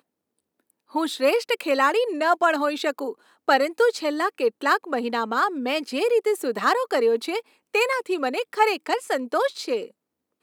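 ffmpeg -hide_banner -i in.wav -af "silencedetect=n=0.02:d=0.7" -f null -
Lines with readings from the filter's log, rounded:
silence_start: 0.00
silence_end: 0.95 | silence_duration: 0.95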